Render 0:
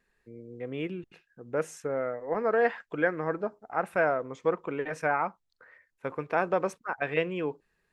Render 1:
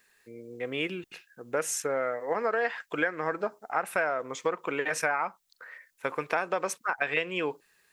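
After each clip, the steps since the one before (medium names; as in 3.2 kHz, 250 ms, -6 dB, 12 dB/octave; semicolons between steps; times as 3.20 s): tilt EQ +3.5 dB/octave; compression 5:1, threshold -31 dBFS, peak gain reduction 10.5 dB; trim +6.5 dB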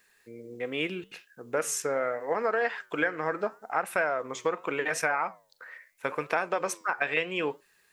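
flange 0.79 Hz, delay 5.8 ms, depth 6.5 ms, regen -86%; trim +5 dB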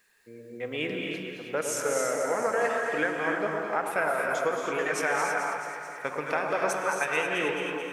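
echo whose repeats swap between lows and highs 109 ms, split 1.2 kHz, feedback 80%, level -6 dB; gated-style reverb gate 340 ms rising, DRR 2 dB; trim -1.5 dB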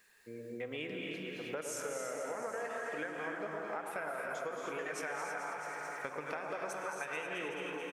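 compression 4:1, threshold -39 dBFS, peak gain reduction 14.5 dB; delay 810 ms -16.5 dB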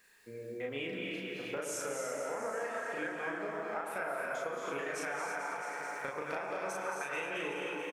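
doubling 36 ms -2 dB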